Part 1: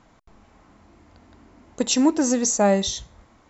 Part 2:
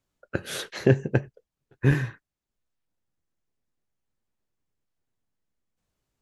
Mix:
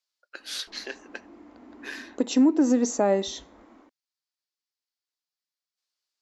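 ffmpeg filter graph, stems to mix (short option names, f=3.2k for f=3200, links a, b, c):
-filter_complex "[0:a]lowpass=f=2.1k:p=1,dynaudnorm=f=110:g=3:m=6dB,adelay=400,volume=-4.5dB[a];[1:a]highpass=1.1k,equalizer=f=4.7k:w=1.5:g=14.5,volume=-7dB[b];[a][b]amix=inputs=2:normalize=0,lowshelf=f=190:t=q:w=3:g=-13,alimiter=limit=-12.5dB:level=0:latency=1:release=247"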